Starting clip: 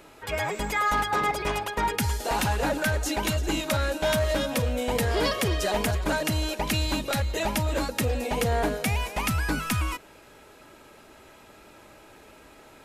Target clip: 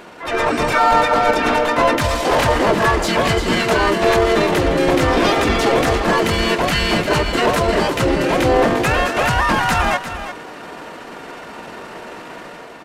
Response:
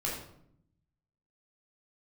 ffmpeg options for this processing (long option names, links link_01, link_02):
-filter_complex "[0:a]bandreject=frequency=262.8:width_type=h:width=4,bandreject=frequency=525.6:width_type=h:width=4,bandreject=frequency=788.4:width_type=h:width=4,bandreject=frequency=1051.2:width_type=h:width=4,bandreject=frequency=1314:width_type=h:width=4,bandreject=frequency=1576.8:width_type=h:width=4,bandreject=frequency=1839.6:width_type=h:width=4,bandreject=frequency=2102.4:width_type=h:width=4,bandreject=frequency=2365.2:width_type=h:width=4,bandreject=frequency=2628:width_type=h:width=4,bandreject=frequency=2890.8:width_type=h:width=4,bandreject=frequency=3153.6:width_type=h:width=4,bandreject=frequency=3416.4:width_type=h:width=4,bandreject=frequency=3679.2:width_type=h:width=4,bandreject=frequency=3942:width_type=h:width=4,bandreject=frequency=4204.8:width_type=h:width=4,bandreject=frequency=4467.6:width_type=h:width=4,bandreject=frequency=4730.4:width_type=h:width=4,bandreject=frequency=4993.2:width_type=h:width=4,bandreject=frequency=5256:width_type=h:width=4,bandreject=frequency=5518.8:width_type=h:width=4,bandreject=frequency=5781.6:width_type=h:width=4,bandreject=frequency=6044.4:width_type=h:width=4,bandreject=frequency=6307.2:width_type=h:width=4,bandreject=frequency=6570:width_type=h:width=4,bandreject=frequency=6832.8:width_type=h:width=4,bandreject=frequency=7095.6:width_type=h:width=4,bandreject=frequency=7358.4:width_type=h:width=4,asplit=2[link_01][link_02];[link_02]highpass=frequency=720:poles=1,volume=18dB,asoftclip=type=tanh:threshold=-16.5dB[link_03];[link_01][link_03]amix=inputs=2:normalize=0,lowpass=frequency=2600:poles=1,volume=-6dB,asplit=3[link_04][link_05][link_06];[link_05]asetrate=35002,aresample=44100,atempo=1.25992,volume=-2dB[link_07];[link_06]asetrate=66075,aresample=44100,atempo=0.66742,volume=-1dB[link_08];[link_04][link_07][link_08]amix=inputs=3:normalize=0,dynaudnorm=framelen=110:gausssize=7:maxgain=5.5dB,asetrate=32097,aresample=44100,atempo=1.37395,aecho=1:1:349:0.282"